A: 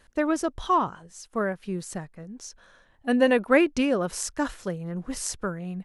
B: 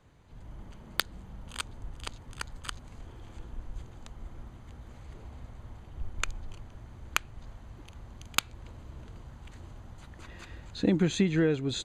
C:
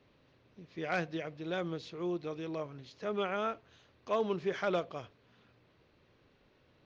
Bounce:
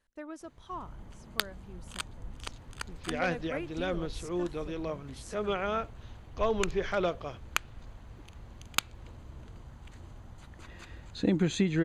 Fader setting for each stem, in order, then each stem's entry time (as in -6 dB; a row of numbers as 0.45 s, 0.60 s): -18.5 dB, -1.5 dB, +2.5 dB; 0.00 s, 0.40 s, 2.30 s